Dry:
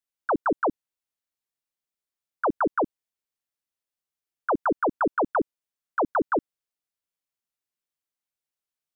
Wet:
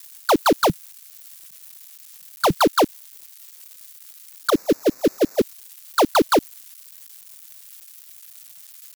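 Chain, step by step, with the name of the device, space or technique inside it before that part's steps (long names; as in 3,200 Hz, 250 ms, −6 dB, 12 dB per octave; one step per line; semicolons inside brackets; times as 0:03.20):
0:04.50–0:05.41: Butterworth low-pass 600 Hz 48 dB per octave
budget class-D amplifier (gap after every zero crossing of 0.16 ms; spike at every zero crossing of −32 dBFS)
0:00.61–0:02.57: low shelf with overshoot 210 Hz +7.5 dB, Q 3
level +8 dB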